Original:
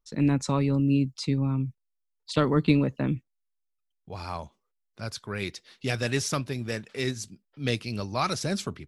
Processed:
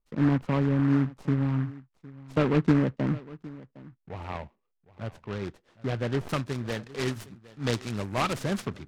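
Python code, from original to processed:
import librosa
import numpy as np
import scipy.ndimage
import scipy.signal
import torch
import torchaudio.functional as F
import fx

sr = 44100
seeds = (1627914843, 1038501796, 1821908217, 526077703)

y = fx.tracing_dist(x, sr, depth_ms=0.031)
y = fx.lowpass(y, sr, hz=fx.steps((0.0, 1200.0), (6.29, 3700.0)), slope=12)
y = y + 10.0 ** (-20.0 / 20.0) * np.pad(y, (int(760 * sr / 1000.0), 0))[:len(y)]
y = fx.noise_mod_delay(y, sr, seeds[0], noise_hz=1200.0, depth_ms=0.081)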